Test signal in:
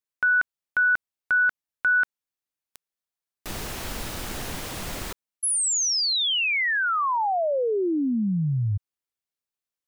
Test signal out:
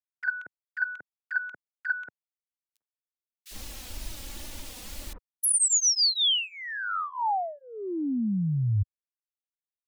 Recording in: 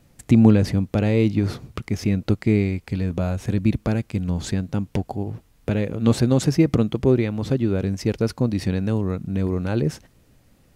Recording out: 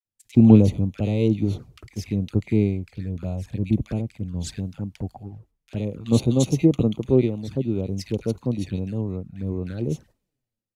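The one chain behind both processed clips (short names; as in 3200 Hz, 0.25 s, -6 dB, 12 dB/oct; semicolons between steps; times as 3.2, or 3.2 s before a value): gate -48 dBFS, range -7 dB; bands offset in time highs, lows 50 ms, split 1400 Hz; envelope flanger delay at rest 9.7 ms, full sweep at -18.5 dBFS; three-band expander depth 70%; gain -2.5 dB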